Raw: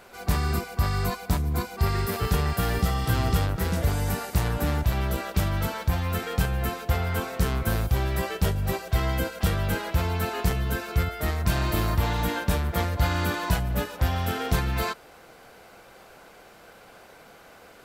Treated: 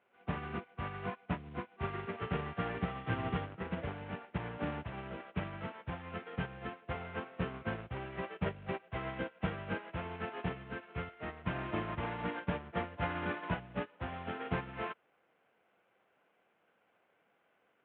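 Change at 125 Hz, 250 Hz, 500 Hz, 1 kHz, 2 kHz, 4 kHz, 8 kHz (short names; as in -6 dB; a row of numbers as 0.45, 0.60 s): -16.0 dB, -10.0 dB, -9.5 dB, -10.0 dB, -9.5 dB, -16.5 dB, under -40 dB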